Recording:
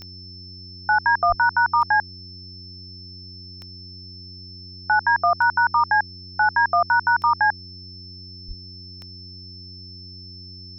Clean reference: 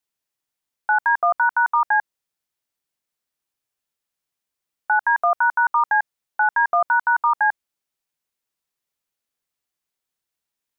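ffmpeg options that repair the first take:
-filter_complex "[0:a]adeclick=t=4,bandreject=f=91.3:t=h:w=4,bandreject=f=182.6:t=h:w=4,bandreject=f=273.9:t=h:w=4,bandreject=f=365.2:t=h:w=4,bandreject=f=5.3k:w=30,asplit=3[a][b][c];[a]afade=t=out:st=1.28:d=0.02[d];[b]highpass=f=140:w=0.5412,highpass=f=140:w=1.3066,afade=t=in:st=1.28:d=0.02,afade=t=out:st=1.4:d=0.02[e];[c]afade=t=in:st=1.4:d=0.02[f];[d][e][f]amix=inputs=3:normalize=0,asplit=3[g][h][i];[g]afade=t=out:st=8.47:d=0.02[j];[h]highpass=f=140:w=0.5412,highpass=f=140:w=1.3066,afade=t=in:st=8.47:d=0.02,afade=t=out:st=8.59:d=0.02[k];[i]afade=t=in:st=8.59:d=0.02[l];[j][k][l]amix=inputs=3:normalize=0"

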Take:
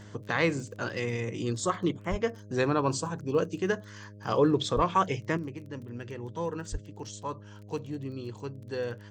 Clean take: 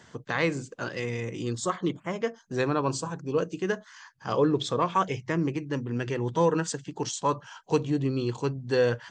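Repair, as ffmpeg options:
-filter_complex "[0:a]adeclick=t=4,bandreject=f=103.1:t=h:w=4,bandreject=f=206.2:t=h:w=4,bandreject=f=309.3:t=h:w=4,bandreject=f=412.4:t=h:w=4,bandreject=f=515.5:t=h:w=4,bandreject=f=618.6:t=h:w=4,asplit=3[a][b][c];[a]afade=t=out:st=2.1:d=0.02[d];[b]highpass=f=140:w=0.5412,highpass=f=140:w=1.3066,afade=t=in:st=2.1:d=0.02,afade=t=out:st=2.22:d=0.02[e];[c]afade=t=in:st=2.22:d=0.02[f];[d][e][f]amix=inputs=3:normalize=0,asplit=3[g][h][i];[g]afade=t=out:st=4.75:d=0.02[j];[h]highpass=f=140:w=0.5412,highpass=f=140:w=1.3066,afade=t=in:st=4.75:d=0.02,afade=t=out:st=4.87:d=0.02[k];[i]afade=t=in:st=4.87:d=0.02[l];[j][k][l]amix=inputs=3:normalize=0,asplit=3[m][n][o];[m]afade=t=out:st=6.71:d=0.02[p];[n]highpass=f=140:w=0.5412,highpass=f=140:w=1.3066,afade=t=in:st=6.71:d=0.02,afade=t=out:st=6.83:d=0.02[q];[o]afade=t=in:st=6.83:d=0.02[r];[p][q][r]amix=inputs=3:normalize=0,asetnsamples=n=441:p=0,asendcmd='5.37 volume volume 10dB',volume=0dB"

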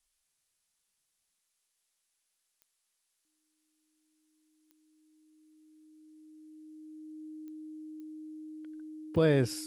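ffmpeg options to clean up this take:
-af "adeclick=t=4,bandreject=f=310:w=30,agate=range=-21dB:threshold=-72dB"

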